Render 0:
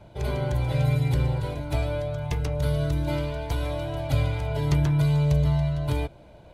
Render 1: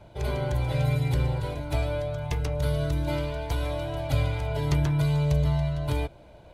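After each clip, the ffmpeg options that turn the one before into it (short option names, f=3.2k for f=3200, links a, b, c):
-af "equalizer=f=180:w=0.88:g=-3"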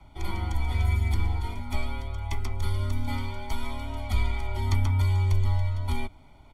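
-af "aecho=1:1:0.9:0.97,afreqshift=-53,volume=-4dB"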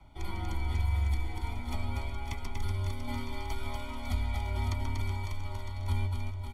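-filter_complex "[0:a]acompressor=threshold=-24dB:ratio=6,asplit=2[a][b];[b]aecho=0:1:240|552|957.6|1485|2170:0.631|0.398|0.251|0.158|0.1[c];[a][c]amix=inputs=2:normalize=0,volume=-4dB"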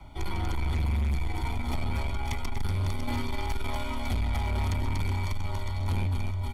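-af "asoftclip=type=tanh:threshold=-32dB,volume=8.5dB"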